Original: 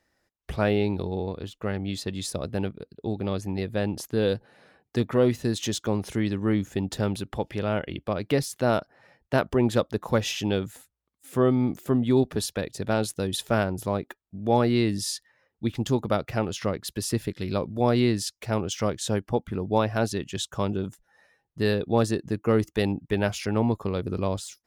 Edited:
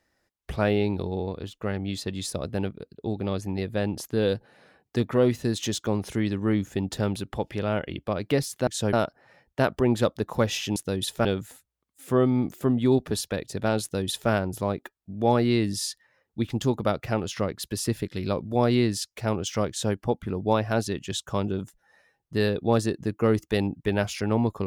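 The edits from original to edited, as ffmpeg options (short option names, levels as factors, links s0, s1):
-filter_complex "[0:a]asplit=5[s0][s1][s2][s3][s4];[s0]atrim=end=8.672[s5];[s1]atrim=start=18.938:end=19.202[s6];[s2]atrim=start=8.668:end=10.502[s7];[s3]atrim=start=13.068:end=13.562[s8];[s4]atrim=start=10.498[s9];[s5][s6]acrossfade=d=0.004:c1=hsin:c2=hsin[s10];[s10][s7]acrossfade=d=0.004:c1=hsin:c2=hsin[s11];[s11][s8]acrossfade=d=0.004:c1=hsin:c2=hsin[s12];[s12][s9]acrossfade=d=0.004:c1=hsin:c2=hsin"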